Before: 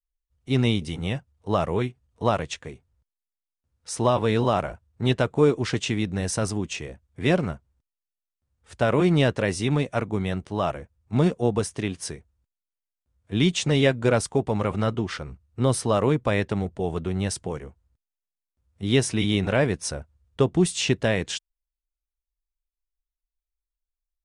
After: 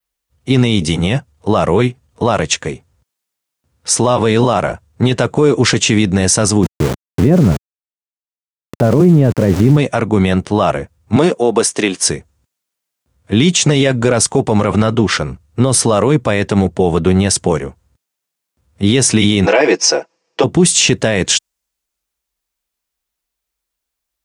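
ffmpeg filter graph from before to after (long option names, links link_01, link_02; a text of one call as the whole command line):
ffmpeg -i in.wav -filter_complex "[0:a]asettb=1/sr,asplit=3[link_01][link_02][link_03];[link_01]atrim=end=6.634[link_04];[link_02]atrim=start=6.63:end=9.77,asetpts=PTS-STARTPTS,afade=type=in:duration=0.004:curve=qsin,afade=type=out:start_time=3.136:duration=0.004:curve=qsin,lowpass=2000,tiltshelf=frequency=650:gain=9.5,aeval=exprs='val(0)*gte(abs(val(0)),0.0251)':channel_layout=same[link_05];[link_03]atrim=start=9.766[link_06];[link_04][link_05]acrossfade=duration=0.004:curve1=hsin:curve2=qsin[link_07];[link_07][link_06]acrossfade=duration=0.004:curve1=qsin:curve2=hsin,asettb=1/sr,asplit=3[link_08][link_09][link_10];[link_08]atrim=end=11.164[link_11];[link_09]atrim=start=11.16:end=12.07,asetpts=PTS-STARTPTS,afade=type=in:duration=0.004:curve=qsin,afade=type=out:start_time=0.906:duration=0.004:curve=qsin,highpass=290,agate=range=-33dB:threshold=-48dB:ratio=3:release=100:detection=peak[link_12];[link_10]atrim=start=12.066[link_13];[link_11][link_12]acrossfade=duration=0.004:curve1=hsin:curve2=qsin[link_14];[link_14][link_13]acrossfade=duration=0.004:curve1=qsin:curve2=hsin,asettb=1/sr,asplit=3[link_15][link_16][link_17];[link_15]atrim=end=19.464[link_18];[link_16]atrim=start=19.46:end=20.44,asetpts=PTS-STARTPTS,afade=type=in:duration=0.004:curve=qsin,afade=type=out:start_time=0.976:duration=0.004:curve=qsin,highpass=frequency=300:width=0.5412,highpass=frequency=300:width=1.3066,equalizer=frequency=410:width_type=q:width=4:gain=3,equalizer=frequency=830:width_type=q:width=4:gain=4,equalizer=frequency=1400:width_type=q:width=4:gain=-4,equalizer=frequency=2500:width_type=q:width=4:gain=4,equalizer=frequency=3600:width_type=q:width=4:gain=-7,equalizer=frequency=5200:width_type=q:width=4:gain=7,lowpass=frequency=6200:width=0.5412,lowpass=frequency=6200:width=1.3066,aecho=1:1:6.1:0.87,atrim=end_sample=43218[link_19];[link_17]atrim=start=20.436[link_20];[link_18][link_19]acrossfade=duration=0.004:curve1=hsin:curve2=qsin[link_21];[link_21][link_20]acrossfade=duration=0.004:curve1=qsin:curve2=hsin,highpass=100,adynamicequalizer=threshold=0.00501:dfrequency=6900:dqfactor=1.5:tfrequency=6900:tqfactor=1.5:attack=5:release=100:ratio=0.375:range=3:mode=boostabove:tftype=bell,alimiter=level_in=18dB:limit=-1dB:release=50:level=0:latency=1,volume=-1dB" out.wav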